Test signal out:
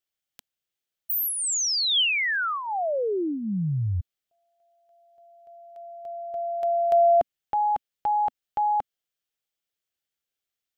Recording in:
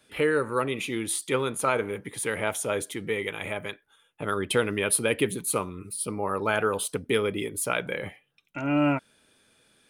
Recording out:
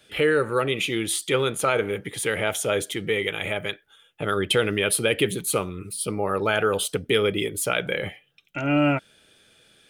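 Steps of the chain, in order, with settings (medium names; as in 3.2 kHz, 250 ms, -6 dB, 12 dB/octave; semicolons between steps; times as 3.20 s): graphic EQ with 31 bands 250 Hz -7 dB, 1 kHz -9 dB, 3.15 kHz +5 dB, 10 kHz -5 dB; in parallel at -1 dB: peak limiter -19 dBFS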